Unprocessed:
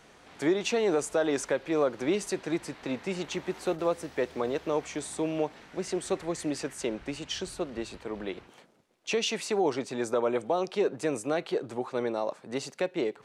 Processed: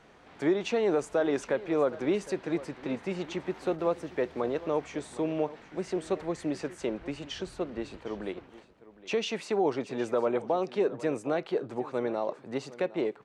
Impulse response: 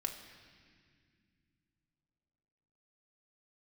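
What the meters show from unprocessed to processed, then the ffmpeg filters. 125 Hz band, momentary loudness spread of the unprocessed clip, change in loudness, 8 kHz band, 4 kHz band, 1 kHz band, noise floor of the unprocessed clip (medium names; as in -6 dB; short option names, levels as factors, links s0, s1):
0.0 dB, 9 LU, -0.5 dB, -9.5 dB, -5.0 dB, -0.5 dB, -57 dBFS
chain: -af "lowpass=f=2300:p=1,aecho=1:1:761:0.133"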